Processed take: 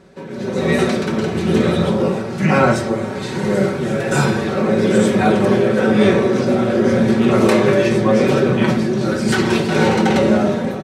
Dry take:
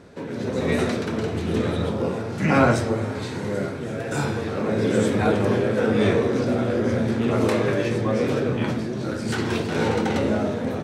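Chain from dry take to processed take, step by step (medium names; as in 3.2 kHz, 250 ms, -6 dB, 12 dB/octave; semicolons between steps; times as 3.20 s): comb 5.3 ms, depth 61%; level rider gain up to 11.5 dB; trim -1 dB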